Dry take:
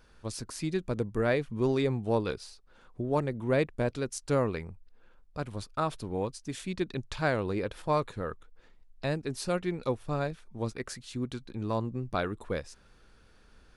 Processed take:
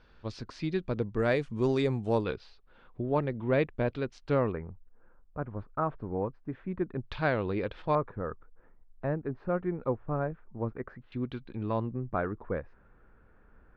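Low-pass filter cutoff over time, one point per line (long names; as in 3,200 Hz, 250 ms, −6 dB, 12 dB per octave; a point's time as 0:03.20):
low-pass filter 24 dB per octave
4,400 Hz
from 0:01.19 8,300 Hz
from 0:02.24 3,600 Hz
from 0:04.52 1,600 Hz
from 0:07.06 3,800 Hz
from 0:07.95 1,600 Hz
from 0:11.12 3,200 Hz
from 0:11.91 1,800 Hz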